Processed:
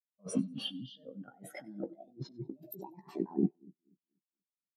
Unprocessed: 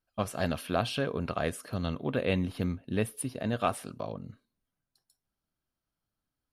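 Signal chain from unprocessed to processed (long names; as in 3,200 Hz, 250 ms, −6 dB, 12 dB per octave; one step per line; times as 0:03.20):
gliding playback speed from 92% → 182%
high-pass filter 160 Hz 24 dB per octave
healed spectral selection 0:00.34–0:00.85, 350–3,400 Hz both
low-pass filter 8,200 Hz 12 dB per octave
compressor whose output falls as the input rises −45 dBFS, ratio −1
wave folding −28 dBFS
double-tracking delay 15 ms −7 dB
echo with a time of its own for lows and highs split 480 Hz, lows 241 ms, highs 95 ms, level −11 dB
every bin expanded away from the loudest bin 2.5 to 1
level +9 dB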